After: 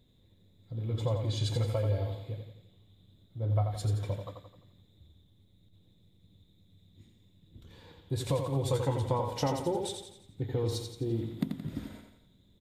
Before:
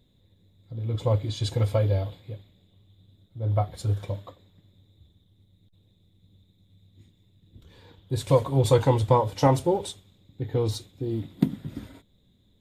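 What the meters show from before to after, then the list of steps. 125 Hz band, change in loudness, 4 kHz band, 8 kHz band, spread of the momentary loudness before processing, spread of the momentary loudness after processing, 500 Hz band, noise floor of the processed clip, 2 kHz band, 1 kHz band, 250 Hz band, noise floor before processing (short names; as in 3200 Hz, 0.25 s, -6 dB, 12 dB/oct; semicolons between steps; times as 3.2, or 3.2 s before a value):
-5.5 dB, -7.0 dB, -3.5 dB, -3.5 dB, 17 LU, 13 LU, -8.0 dB, -64 dBFS, -6.5 dB, -9.0 dB, -6.5 dB, -64 dBFS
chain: compressor 4:1, threshold -26 dBFS, peak gain reduction 11 dB; feedback echo 86 ms, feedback 47%, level -6 dB; gain -2 dB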